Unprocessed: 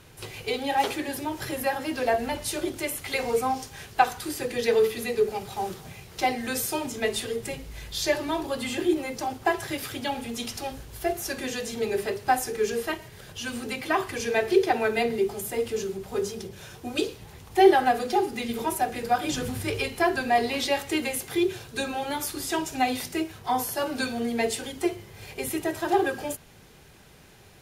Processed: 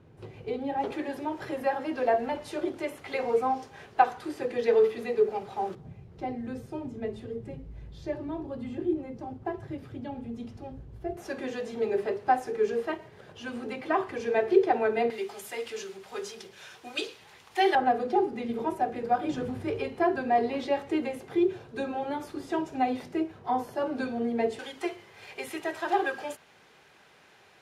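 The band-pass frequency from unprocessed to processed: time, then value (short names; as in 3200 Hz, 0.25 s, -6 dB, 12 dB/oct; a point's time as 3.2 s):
band-pass, Q 0.53
210 Hz
from 0.92 s 570 Hz
from 5.75 s 120 Hz
from 11.17 s 520 Hz
from 15.1 s 2100 Hz
from 17.75 s 390 Hz
from 24.59 s 1400 Hz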